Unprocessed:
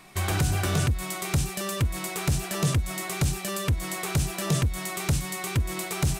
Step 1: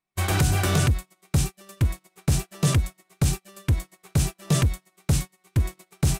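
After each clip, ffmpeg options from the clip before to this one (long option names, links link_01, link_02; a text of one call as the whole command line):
ffmpeg -i in.wav -af "agate=range=-40dB:threshold=-27dB:ratio=16:detection=peak,volume=3.5dB" out.wav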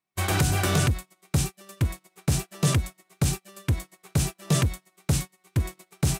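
ffmpeg -i in.wav -af "highpass=frequency=88:poles=1" out.wav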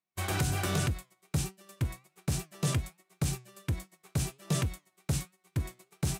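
ffmpeg -i in.wav -af "flanger=delay=5.2:depth=2.9:regen=87:speed=1.3:shape=sinusoidal,volume=-2.5dB" out.wav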